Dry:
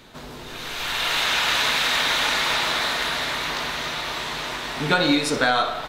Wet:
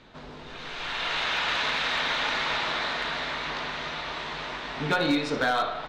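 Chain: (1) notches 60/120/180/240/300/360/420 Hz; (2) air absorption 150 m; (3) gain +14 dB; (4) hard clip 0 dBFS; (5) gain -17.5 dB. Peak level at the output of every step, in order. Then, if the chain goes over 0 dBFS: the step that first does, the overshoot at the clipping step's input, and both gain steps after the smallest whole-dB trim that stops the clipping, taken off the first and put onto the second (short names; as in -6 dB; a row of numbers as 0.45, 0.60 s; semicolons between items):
-4.5, -5.5, +8.5, 0.0, -17.5 dBFS; step 3, 8.5 dB; step 3 +5 dB, step 5 -8.5 dB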